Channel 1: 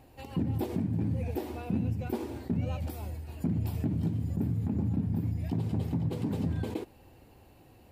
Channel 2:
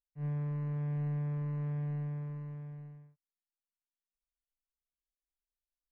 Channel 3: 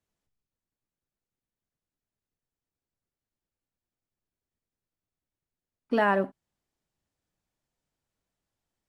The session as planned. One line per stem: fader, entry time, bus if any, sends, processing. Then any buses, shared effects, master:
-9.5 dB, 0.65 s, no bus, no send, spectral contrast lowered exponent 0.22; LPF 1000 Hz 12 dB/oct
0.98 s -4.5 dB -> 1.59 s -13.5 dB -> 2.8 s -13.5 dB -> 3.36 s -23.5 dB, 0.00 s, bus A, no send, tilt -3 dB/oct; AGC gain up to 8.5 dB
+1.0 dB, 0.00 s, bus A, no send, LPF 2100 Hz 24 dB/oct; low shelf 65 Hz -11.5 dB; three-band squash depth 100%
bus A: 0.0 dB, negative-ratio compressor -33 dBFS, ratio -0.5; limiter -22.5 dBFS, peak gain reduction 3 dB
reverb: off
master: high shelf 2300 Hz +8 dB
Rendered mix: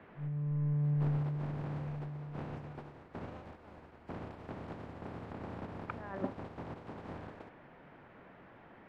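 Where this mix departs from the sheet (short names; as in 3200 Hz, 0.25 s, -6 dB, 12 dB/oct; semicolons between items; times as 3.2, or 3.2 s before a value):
stem 2 -4.5 dB -> -16.0 dB; master: missing high shelf 2300 Hz +8 dB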